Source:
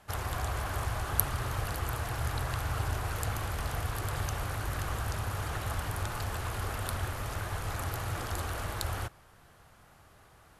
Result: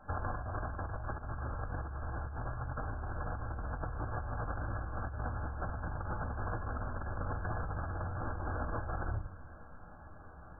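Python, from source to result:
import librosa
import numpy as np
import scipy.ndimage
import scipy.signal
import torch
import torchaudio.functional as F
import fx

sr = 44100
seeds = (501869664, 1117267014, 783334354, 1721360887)

y = fx.room_shoebox(x, sr, seeds[0], volume_m3=260.0, walls='furnished', distance_m=2.2)
y = fx.over_compress(y, sr, threshold_db=-33.0, ratio=-1.0)
y = fx.brickwall_lowpass(y, sr, high_hz=1700.0)
y = y * 10.0 ** (-4.5 / 20.0)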